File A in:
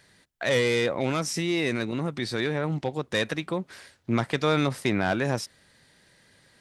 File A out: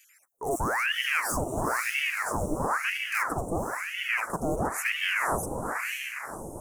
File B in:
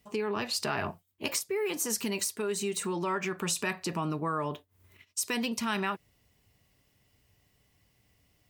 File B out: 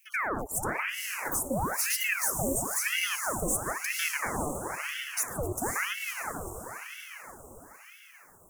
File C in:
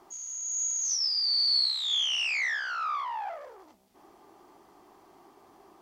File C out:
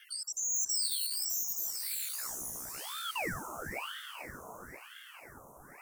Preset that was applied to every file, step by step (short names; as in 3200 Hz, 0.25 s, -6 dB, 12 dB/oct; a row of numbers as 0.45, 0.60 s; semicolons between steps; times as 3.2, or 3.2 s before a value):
random spectral dropouts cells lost 25%; high shelf 4900 Hz +11.5 dB; overloaded stage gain 25 dB; inverse Chebyshev band-stop 1500–4800 Hz, stop band 40 dB; diffused feedback echo 0.516 s, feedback 54%, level -3.5 dB; ring modulator with a swept carrier 1300 Hz, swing 90%, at 1 Hz; gain +4 dB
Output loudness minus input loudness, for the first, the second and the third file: -2.0, +1.5, -7.5 LU